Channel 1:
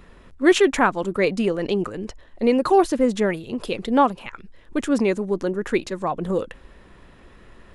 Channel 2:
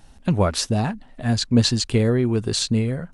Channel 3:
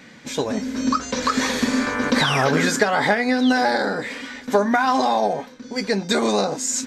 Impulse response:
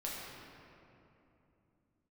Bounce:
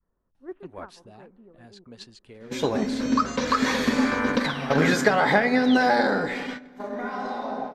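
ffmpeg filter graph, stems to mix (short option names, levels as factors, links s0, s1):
-filter_complex "[0:a]lowpass=f=1400:w=0.5412,lowpass=f=1400:w=1.3066,adynamicequalizer=threshold=0.0447:dfrequency=440:dqfactor=0.75:tfrequency=440:tqfactor=0.75:attack=5:release=100:ratio=0.375:range=2.5:mode=cutabove:tftype=bell,volume=0.1,asplit=3[s0][s1][s2];[s1]volume=0.126[s3];[1:a]acrossover=split=320[s4][s5];[s4]acompressor=threshold=0.0251:ratio=4[s6];[s6][s5]amix=inputs=2:normalize=0,adelay=350,volume=0.211[s7];[2:a]adelay=2250,volume=0.794,asplit=2[s8][s9];[s9]volume=0.237[s10];[s2]apad=whole_len=401869[s11];[s8][s11]sidechaingate=range=0.0224:threshold=0.00112:ratio=16:detection=peak[s12];[3:a]atrim=start_sample=2205[s13];[s3][s10]amix=inputs=2:normalize=0[s14];[s14][s13]afir=irnorm=-1:irlink=0[s15];[s0][s7][s12][s15]amix=inputs=4:normalize=0,agate=range=0.355:threshold=0.0251:ratio=16:detection=peak,equalizer=f=7900:t=o:w=1.4:g=-8"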